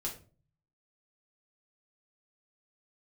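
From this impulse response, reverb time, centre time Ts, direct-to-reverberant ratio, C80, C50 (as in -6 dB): 0.40 s, 19 ms, -3.0 dB, 14.5 dB, 9.5 dB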